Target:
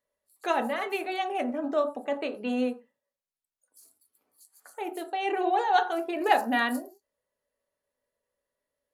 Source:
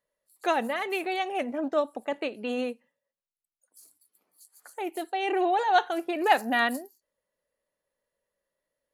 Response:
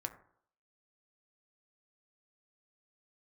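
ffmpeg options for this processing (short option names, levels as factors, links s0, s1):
-filter_complex "[1:a]atrim=start_sample=2205,atrim=end_sample=3969,asetrate=33516,aresample=44100[s0];[0:a][s0]afir=irnorm=-1:irlink=0,volume=0.891"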